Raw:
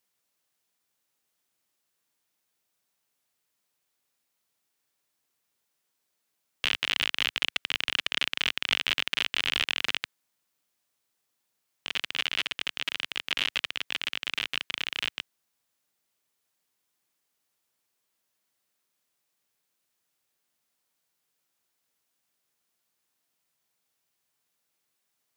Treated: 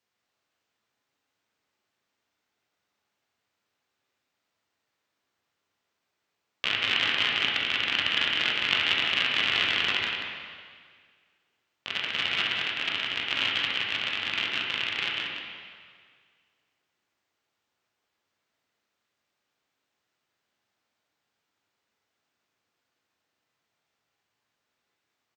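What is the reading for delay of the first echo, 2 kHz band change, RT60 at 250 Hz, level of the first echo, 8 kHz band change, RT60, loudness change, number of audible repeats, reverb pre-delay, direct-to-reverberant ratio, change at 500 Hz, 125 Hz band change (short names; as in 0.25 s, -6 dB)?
0.183 s, +4.0 dB, 1.9 s, -7.5 dB, -5.0 dB, 1.9 s, +3.0 dB, 1, 6 ms, -3.5 dB, +5.0 dB, +5.0 dB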